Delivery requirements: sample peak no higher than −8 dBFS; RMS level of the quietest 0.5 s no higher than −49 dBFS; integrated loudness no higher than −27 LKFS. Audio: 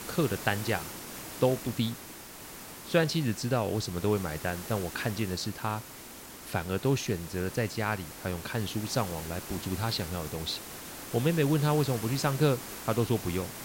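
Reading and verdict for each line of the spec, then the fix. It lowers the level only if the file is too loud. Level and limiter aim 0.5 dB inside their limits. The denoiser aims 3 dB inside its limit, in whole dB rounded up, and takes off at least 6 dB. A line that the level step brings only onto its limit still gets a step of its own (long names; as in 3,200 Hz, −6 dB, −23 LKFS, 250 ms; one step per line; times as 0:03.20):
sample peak −10.5 dBFS: in spec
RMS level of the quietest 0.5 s −46 dBFS: out of spec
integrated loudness −30.5 LKFS: in spec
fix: broadband denoise 6 dB, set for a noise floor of −46 dBFS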